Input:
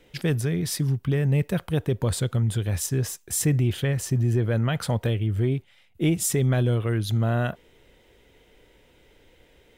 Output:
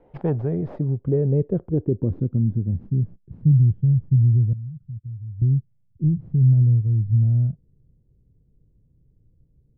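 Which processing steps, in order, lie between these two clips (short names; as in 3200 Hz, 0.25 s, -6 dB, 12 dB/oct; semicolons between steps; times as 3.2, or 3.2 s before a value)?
tracing distortion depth 0.33 ms; low-pass sweep 830 Hz -> 140 Hz, 0.12–3.58; 4.53–5.42 passive tone stack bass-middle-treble 6-0-2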